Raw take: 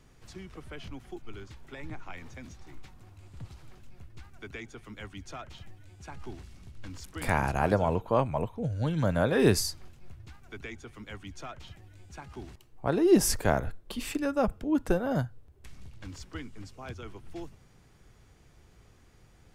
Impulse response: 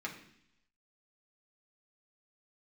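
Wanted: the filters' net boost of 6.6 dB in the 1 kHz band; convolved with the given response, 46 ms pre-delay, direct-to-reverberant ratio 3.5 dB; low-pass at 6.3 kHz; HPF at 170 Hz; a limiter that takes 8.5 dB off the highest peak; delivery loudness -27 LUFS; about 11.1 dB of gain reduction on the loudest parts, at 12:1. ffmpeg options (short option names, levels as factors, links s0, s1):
-filter_complex "[0:a]highpass=170,lowpass=6300,equalizer=f=1000:t=o:g=8.5,acompressor=threshold=0.0501:ratio=12,alimiter=limit=0.075:level=0:latency=1,asplit=2[s0][s1];[1:a]atrim=start_sample=2205,adelay=46[s2];[s1][s2]afir=irnorm=-1:irlink=0,volume=0.531[s3];[s0][s3]amix=inputs=2:normalize=0,volume=2.99"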